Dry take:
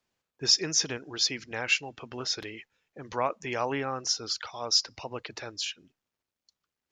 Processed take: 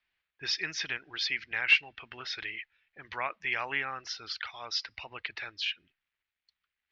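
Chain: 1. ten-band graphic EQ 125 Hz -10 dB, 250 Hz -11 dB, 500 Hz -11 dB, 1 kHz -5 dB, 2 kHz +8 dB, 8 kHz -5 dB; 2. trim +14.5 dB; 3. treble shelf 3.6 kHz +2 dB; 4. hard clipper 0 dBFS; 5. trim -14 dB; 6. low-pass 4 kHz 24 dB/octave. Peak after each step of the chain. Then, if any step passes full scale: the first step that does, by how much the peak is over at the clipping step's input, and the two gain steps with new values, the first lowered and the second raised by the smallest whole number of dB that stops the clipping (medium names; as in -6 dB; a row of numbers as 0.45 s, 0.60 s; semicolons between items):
-10.0 dBFS, +4.5 dBFS, +5.0 dBFS, 0.0 dBFS, -14.0 dBFS, -12.5 dBFS; step 2, 5.0 dB; step 2 +9.5 dB, step 5 -9 dB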